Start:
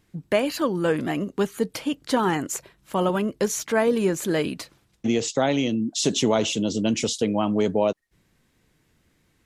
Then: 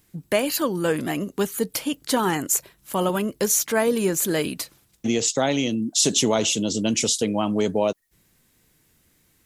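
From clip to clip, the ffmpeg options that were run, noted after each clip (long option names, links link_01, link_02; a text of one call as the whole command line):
ffmpeg -i in.wav -af "aemphasis=mode=production:type=50fm" out.wav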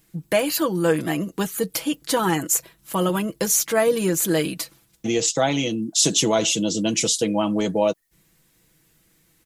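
ffmpeg -i in.wav -af "aecho=1:1:6.1:0.56" out.wav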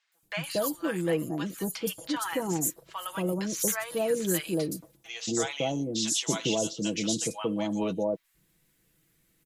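ffmpeg -i in.wav -filter_complex "[0:a]acrossover=split=850|5700[link_01][link_02][link_03];[link_03]adelay=120[link_04];[link_01]adelay=230[link_05];[link_05][link_02][link_04]amix=inputs=3:normalize=0,volume=-7dB" out.wav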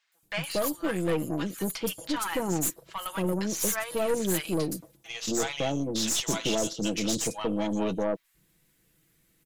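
ffmpeg -i in.wav -af "aeval=exprs='(tanh(17.8*val(0)+0.55)-tanh(0.55))/17.8':channel_layout=same,volume=4dB" out.wav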